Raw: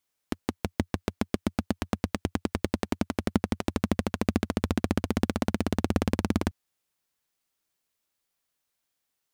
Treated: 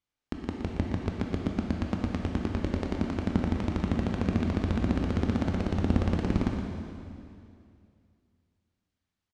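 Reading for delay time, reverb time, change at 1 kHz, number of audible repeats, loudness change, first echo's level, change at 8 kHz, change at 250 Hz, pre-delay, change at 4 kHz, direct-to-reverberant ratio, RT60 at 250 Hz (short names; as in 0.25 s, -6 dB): 0.118 s, 2.5 s, -3.0 dB, 1, 0.0 dB, -9.0 dB, under -10 dB, 0.0 dB, 13 ms, -5.0 dB, 0.0 dB, 2.6 s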